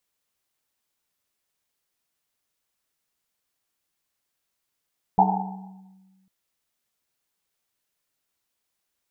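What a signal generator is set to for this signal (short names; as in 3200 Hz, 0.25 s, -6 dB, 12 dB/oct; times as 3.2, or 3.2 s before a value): Risset drum, pitch 190 Hz, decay 1.64 s, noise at 820 Hz, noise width 190 Hz, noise 60%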